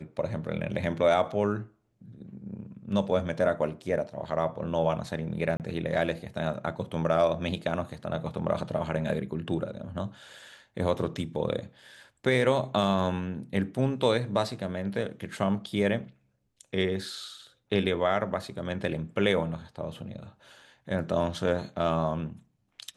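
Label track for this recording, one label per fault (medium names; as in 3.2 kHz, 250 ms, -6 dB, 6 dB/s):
5.570000	5.600000	dropout 28 ms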